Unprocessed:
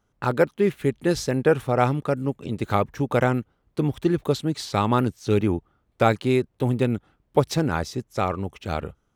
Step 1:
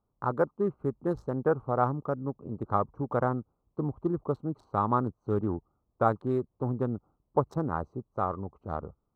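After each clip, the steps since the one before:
adaptive Wiener filter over 25 samples
high shelf with overshoot 1,700 Hz −13 dB, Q 3
notch filter 4,800 Hz, Q 12
level −8 dB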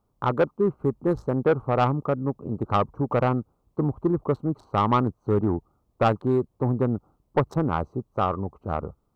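soft clipping −20 dBFS, distortion −14 dB
level +7.5 dB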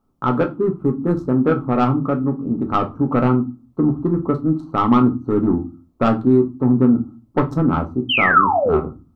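sound drawn into the spectrogram fall, 0:08.09–0:08.77, 360–3,200 Hz −19 dBFS
hollow resonant body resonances 260/1,300 Hz, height 12 dB, ringing for 45 ms
convolution reverb RT60 0.30 s, pre-delay 4 ms, DRR 3.5 dB

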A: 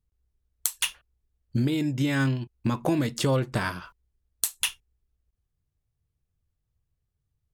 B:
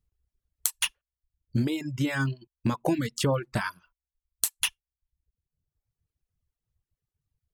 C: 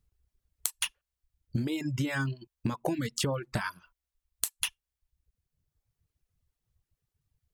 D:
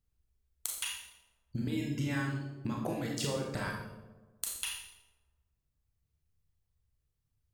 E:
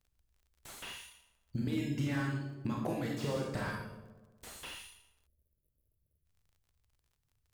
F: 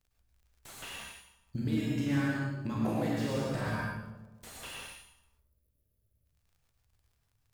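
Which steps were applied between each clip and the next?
reverb reduction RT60 1 s; notch filter 3,600 Hz, Q 27; reverb reduction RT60 0.82 s
downward compressor, threshold −31 dBFS, peak gain reduction 11.5 dB; level +3.5 dB
on a send: delay with a low-pass on its return 122 ms, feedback 56%, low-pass 440 Hz, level −3.5 dB; on the sum: four-comb reverb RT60 0.68 s, combs from 28 ms, DRR −1 dB; level −7 dB
surface crackle 52 per second −58 dBFS; time-frequency box erased 0:05.27–0:06.25, 660–9,900 Hz; slew-rate limiting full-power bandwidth 23 Hz
dense smooth reverb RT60 0.58 s, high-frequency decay 0.55×, pre-delay 90 ms, DRR −0.5 dB

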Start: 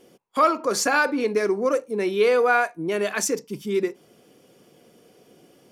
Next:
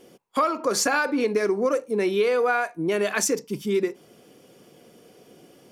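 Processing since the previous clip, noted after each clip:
downward compressor 6 to 1, threshold −21 dBFS, peak gain reduction 8.5 dB
level +2.5 dB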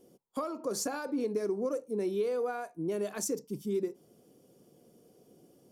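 parametric band 2,100 Hz −15 dB 2.3 octaves
level −6.5 dB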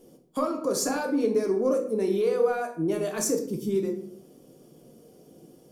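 rectangular room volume 91 cubic metres, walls mixed, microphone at 0.57 metres
level +5.5 dB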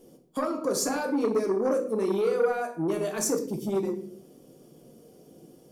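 saturating transformer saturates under 570 Hz

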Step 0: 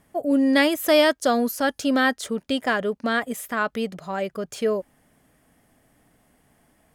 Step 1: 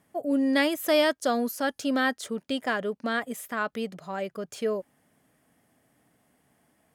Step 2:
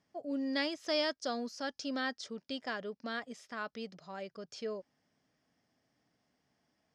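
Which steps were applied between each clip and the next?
high-pass filter 98 Hz 12 dB per octave; level −5 dB
transistor ladder low-pass 5,800 Hz, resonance 65%

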